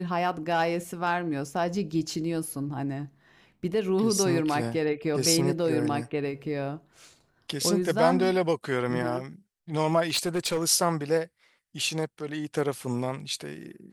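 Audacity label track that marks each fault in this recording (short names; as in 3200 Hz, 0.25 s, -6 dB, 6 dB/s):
10.100000	10.680000	clipped -22 dBFS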